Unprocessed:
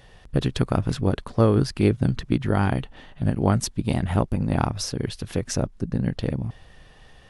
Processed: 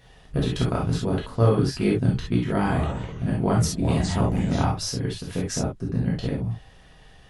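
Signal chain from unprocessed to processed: 2.53–4.58 echoes that change speed 0.124 s, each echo -4 st, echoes 2, each echo -6 dB; non-linear reverb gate 90 ms flat, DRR -3.5 dB; gain -5.5 dB

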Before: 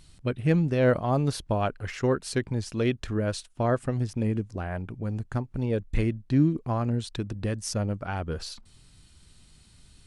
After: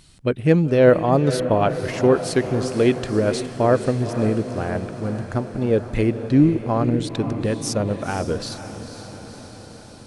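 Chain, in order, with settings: low shelf 71 Hz -9.5 dB; diffused feedback echo 0.501 s, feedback 67%, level -10.5 dB; dynamic EQ 440 Hz, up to +5 dB, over -37 dBFS, Q 1; gain +5.5 dB

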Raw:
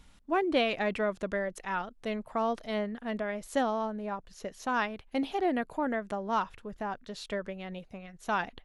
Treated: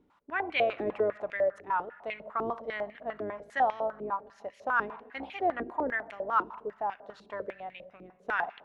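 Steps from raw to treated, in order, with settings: octaver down 2 oct, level -1 dB; shoebox room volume 1800 m³, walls mixed, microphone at 0.38 m; stepped band-pass 10 Hz 350–2300 Hz; gain +8.5 dB

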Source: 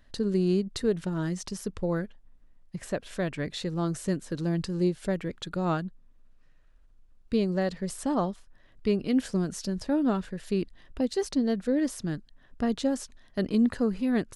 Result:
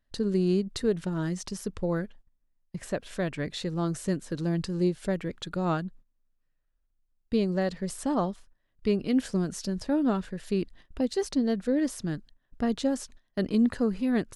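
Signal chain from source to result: gate -48 dBFS, range -17 dB

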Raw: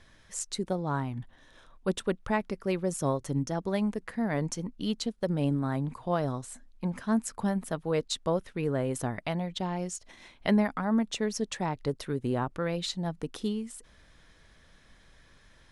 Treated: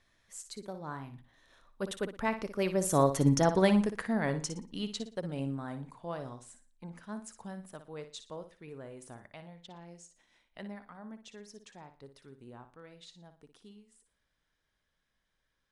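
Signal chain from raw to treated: Doppler pass-by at 3.41, 11 m/s, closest 4.2 m; low shelf 410 Hz -5 dB; flutter echo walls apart 10 m, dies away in 0.34 s; gain +8.5 dB

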